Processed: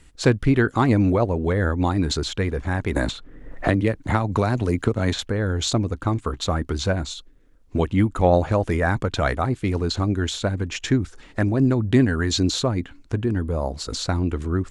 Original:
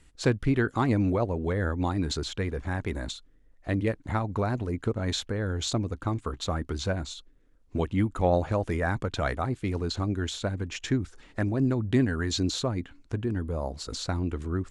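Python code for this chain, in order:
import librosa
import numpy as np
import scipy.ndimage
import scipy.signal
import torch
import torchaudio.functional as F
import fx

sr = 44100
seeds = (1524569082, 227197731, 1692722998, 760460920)

y = fx.band_squash(x, sr, depth_pct=100, at=(2.96, 5.19))
y = F.gain(torch.from_numpy(y), 6.5).numpy()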